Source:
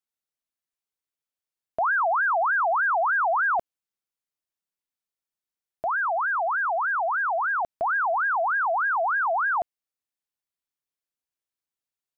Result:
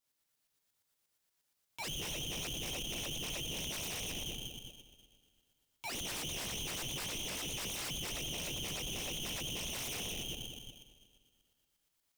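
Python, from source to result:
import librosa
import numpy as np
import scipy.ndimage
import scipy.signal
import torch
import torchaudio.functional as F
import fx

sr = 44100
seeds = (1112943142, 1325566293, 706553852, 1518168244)

p1 = fx.sine_speech(x, sr, at=(5.94, 7.91))
p2 = scipy.signal.sosfilt(scipy.signal.butter(4, 1400.0, 'highpass', fs=sr, output='sos'), p1)
p3 = fx.echo_feedback(p2, sr, ms=194, feedback_pct=48, wet_db=-4.5)
p4 = fx.rev_double_slope(p3, sr, seeds[0], early_s=0.49, late_s=2.0, knee_db=-16, drr_db=-0.5)
p5 = np.clip(10.0 ** (32.5 / 20.0) * p4, -1.0, 1.0) / 10.0 ** (32.5 / 20.0)
p6 = p4 + (p5 * 10.0 ** (-6.5 / 20.0))
p7 = fx.over_compress(p6, sr, threshold_db=-30.0, ratio=-1.0)
p8 = fx.tremolo_shape(p7, sr, shape='saw_up', hz=8.5, depth_pct=50)
p9 = 10.0 ** (-35.5 / 20.0) * (np.abs((p8 / 10.0 ** (-35.5 / 20.0) + 3.0) % 4.0 - 2.0) - 1.0)
y = p9 * np.sign(np.sin(2.0 * np.pi * 1600.0 * np.arange(len(p9)) / sr))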